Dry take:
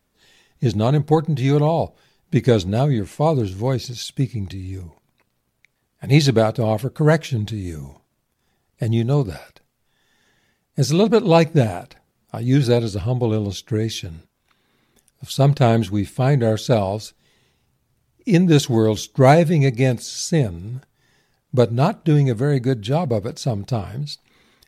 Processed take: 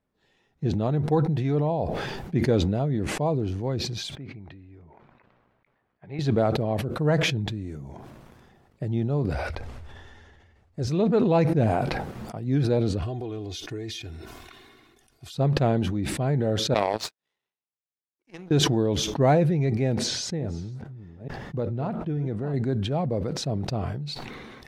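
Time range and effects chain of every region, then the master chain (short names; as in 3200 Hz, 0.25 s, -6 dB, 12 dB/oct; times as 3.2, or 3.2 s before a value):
4.15–6.19 LPF 2200 Hz + low shelf 480 Hz -11.5 dB + compressor 1.5:1, threshold -32 dBFS
9.34–10.87 LPF 9700 Hz + resonant low shelf 110 Hz +10 dB, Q 3
13.02–15.35 high shelf 2100 Hz +11 dB + comb 2.8 ms, depth 74% + compressor 4:1, threshold -23 dBFS
16.74–18.51 HPF 1400 Hz 6 dB/oct + power-law curve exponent 2
19.95–22.54 reverse delay 0.444 s, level -10.5 dB + high shelf 6400 Hz -10.5 dB + compressor 2.5:1, threshold -19 dBFS
whole clip: LPF 1300 Hz 6 dB/oct; low shelf 62 Hz -7 dB; sustainer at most 26 dB/s; gain -7 dB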